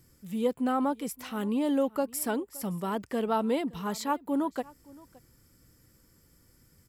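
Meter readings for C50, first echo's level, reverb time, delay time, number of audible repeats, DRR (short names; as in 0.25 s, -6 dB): none, -23.0 dB, none, 0.569 s, 1, none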